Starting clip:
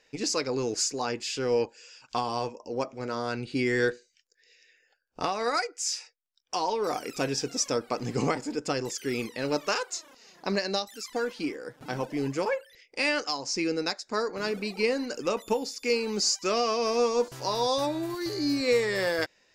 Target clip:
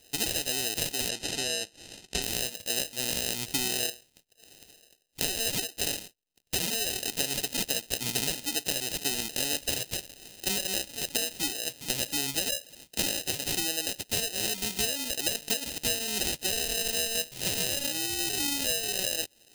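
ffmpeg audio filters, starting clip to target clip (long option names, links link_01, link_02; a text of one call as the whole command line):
ffmpeg -i in.wav -filter_complex "[0:a]acrusher=samples=39:mix=1:aa=0.000001,aexciter=amount=5.8:drive=7.4:freq=2200,acompressor=threshold=-23dB:ratio=10,asettb=1/sr,asplit=3[link_01][link_02][link_03];[link_01]atrim=end=1.094[link_04];[link_02]atrim=start=1.09:end=2.22,asetpts=PTS-STARTPTS,afade=type=in:duration=0.004:curve=qsin,afade=type=out:start_time=1.126:duration=0.004:curve=qsin,lowpass=8300[link_05];[link_03]atrim=start=2.216[link_06];[link_04][link_05]acrossfade=duration=0.004:curve1=hsin:curve2=qsin[link_07];[link_07][link_06]acrossfade=duration=0.004:curve1=qsin:curve2=hsin,volume=-1.5dB" out.wav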